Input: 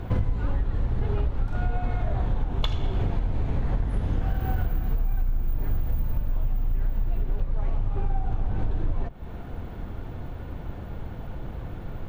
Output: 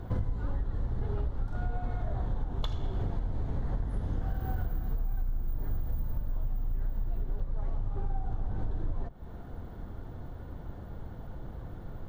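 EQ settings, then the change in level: bell 2500 Hz -11 dB 0.52 oct; -6.5 dB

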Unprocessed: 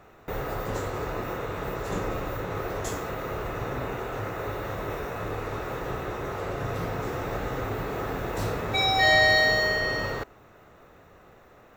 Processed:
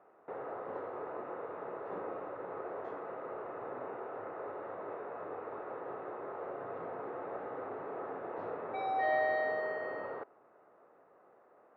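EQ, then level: HPF 430 Hz 12 dB/oct; LPF 1100 Hz 12 dB/oct; air absorption 190 m; -5.0 dB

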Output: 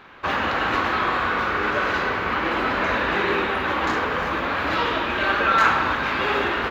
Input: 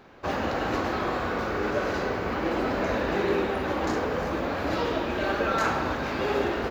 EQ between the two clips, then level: band shelf 1900 Hz +10 dB 2.3 oct; 0.0 dB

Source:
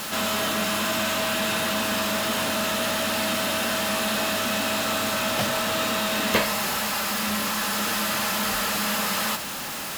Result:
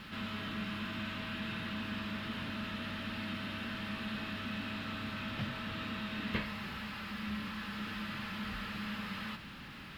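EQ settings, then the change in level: air absorption 420 m; passive tone stack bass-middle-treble 6-0-2; +9.5 dB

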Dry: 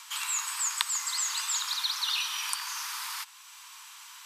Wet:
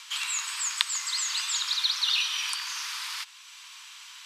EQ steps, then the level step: band-pass 3200 Hz, Q 0.81; +5.0 dB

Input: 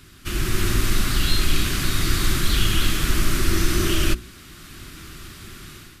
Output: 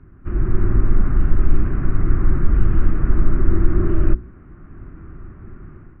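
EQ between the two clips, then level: Gaussian blur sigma 6.3 samples; air absorption 250 m; low shelf 71 Hz +5.5 dB; +2.0 dB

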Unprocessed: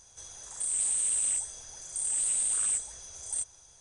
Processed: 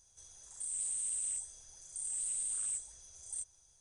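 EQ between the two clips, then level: pre-emphasis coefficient 0.8; tilt -2 dB/oct; -2.5 dB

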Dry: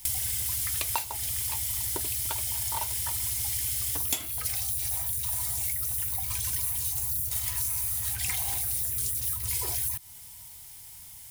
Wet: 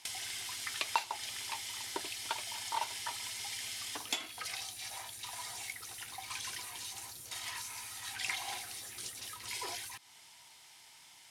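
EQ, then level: BPF 370–4600 Hz; bell 510 Hz -4.5 dB 0.82 oct; +1.0 dB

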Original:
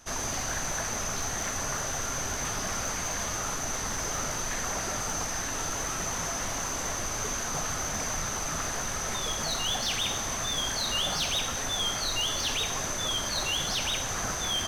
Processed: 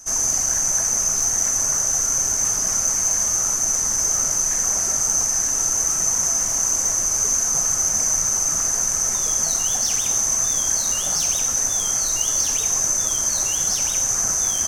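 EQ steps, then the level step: resonant high shelf 4900 Hz +9.5 dB, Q 3; 0.0 dB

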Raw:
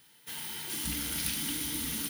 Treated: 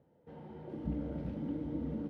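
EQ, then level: HPF 83 Hz; synth low-pass 570 Hz, resonance Q 4.9; low shelf 180 Hz +11 dB; -2.5 dB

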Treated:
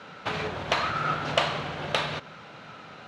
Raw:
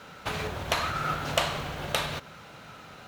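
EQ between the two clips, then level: HPF 120 Hz 12 dB/oct; LPF 4500 Hz 12 dB/oct; +2.5 dB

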